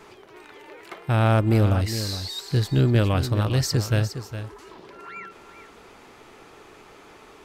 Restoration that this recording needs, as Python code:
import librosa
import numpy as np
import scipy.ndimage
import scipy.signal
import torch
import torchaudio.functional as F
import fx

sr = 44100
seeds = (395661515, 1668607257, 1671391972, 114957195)

y = fx.fix_declip(x, sr, threshold_db=-10.0)
y = fx.fix_echo_inverse(y, sr, delay_ms=411, level_db=-11.0)